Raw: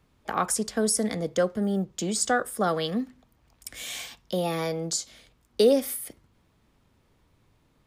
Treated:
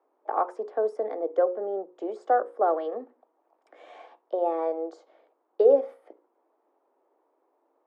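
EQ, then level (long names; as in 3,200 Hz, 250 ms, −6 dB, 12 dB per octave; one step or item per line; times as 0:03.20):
Butterworth high-pass 320 Hz 48 dB per octave
low-pass with resonance 790 Hz, resonance Q 1.7
mains-hum notches 60/120/180/240/300/360/420/480/540 Hz
0.0 dB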